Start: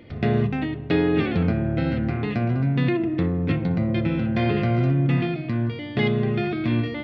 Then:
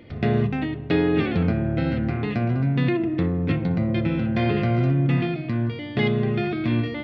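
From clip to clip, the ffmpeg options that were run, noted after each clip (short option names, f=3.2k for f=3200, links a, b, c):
-af anull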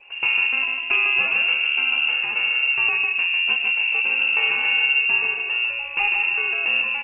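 -af "aecho=1:1:150|300|450|600:0.562|0.18|0.0576|0.0184,lowpass=f=2.5k:t=q:w=0.5098,lowpass=f=2.5k:t=q:w=0.6013,lowpass=f=2.5k:t=q:w=0.9,lowpass=f=2.5k:t=q:w=2.563,afreqshift=-2900" -ar 48000 -c:a libopus -b:a 24k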